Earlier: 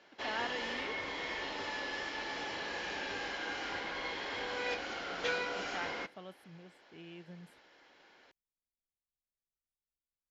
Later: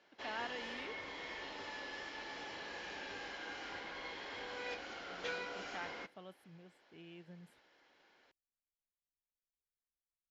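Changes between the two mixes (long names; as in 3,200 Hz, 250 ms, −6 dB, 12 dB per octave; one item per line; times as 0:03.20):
speech −4.0 dB
background −7.0 dB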